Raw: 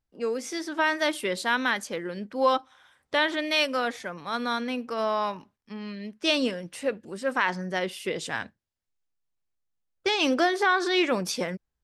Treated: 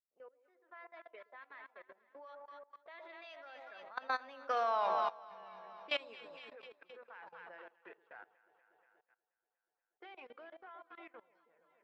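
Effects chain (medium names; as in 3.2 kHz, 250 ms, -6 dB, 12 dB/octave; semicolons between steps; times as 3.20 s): coarse spectral quantiser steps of 15 dB; Doppler pass-by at 4.82 s, 29 m/s, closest 5 m; level-controlled noise filter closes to 1.4 kHz, open at -35.5 dBFS; three-band isolator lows -22 dB, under 460 Hz, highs -13 dB, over 3.3 kHz; hum notches 50/100/150/200/250/300/350/400 Hz; transient shaper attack +6 dB, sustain -4 dB; echo whose repeats swap between lows and highs 120 ms, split 870 Hz, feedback 76%, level -8 dB; level held to a coarse grid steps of 20 dB; trim +7.5 dB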